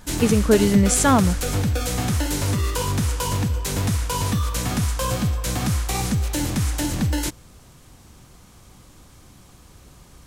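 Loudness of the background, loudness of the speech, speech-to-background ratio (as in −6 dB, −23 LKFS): −23.5 LKFS, −18.5 LKFS, 5.0 dB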